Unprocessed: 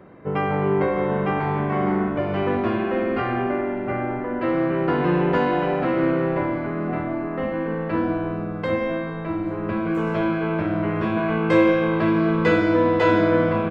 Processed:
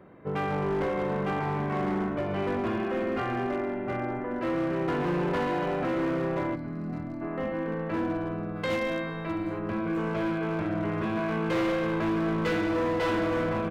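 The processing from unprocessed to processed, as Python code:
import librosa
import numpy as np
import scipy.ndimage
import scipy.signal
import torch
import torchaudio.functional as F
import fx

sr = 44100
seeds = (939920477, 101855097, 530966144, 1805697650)

y = np.clip(10.0 ** (18.5 / 20.0) * x, -1.0, 1.0) / 10.0 ** (18.5 / 20.0)
y = fx.spec_box(y, sr, start_s=6.55, length_s=0.67, low_hz=310.0, high_hz=3800.0, gain_db=-10)
y = fx.high_shelf(y, sr, hz=2500.0, db=11.5, at=(8.55, 9.58), fade=0.02)
y = y * 10.0 ** (-5.5 / 20.0)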